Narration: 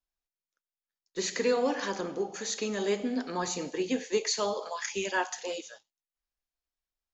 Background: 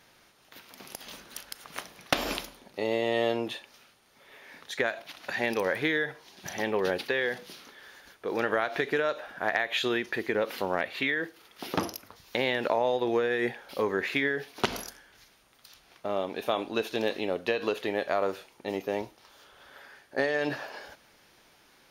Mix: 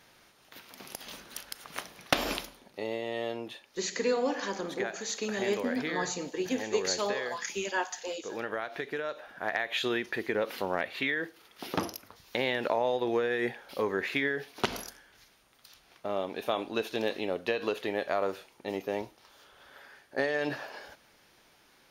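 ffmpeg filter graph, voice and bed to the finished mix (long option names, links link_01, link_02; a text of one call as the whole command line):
ffmpeg -i stem1.wav -i stem2.wav -filter_complex "[0:a]adelay=2600,volume=-1.5dB[link_01];[1:a]volume=5.5dB,afade=type=out:start_time=2.21:duration=0.81:silence=0.421697,afade=type=in:start_time=9.02:duration=0.83:silence=0.530884[link_02];[link_01][link_02]amix=inputs=2:normalize=0" out.wav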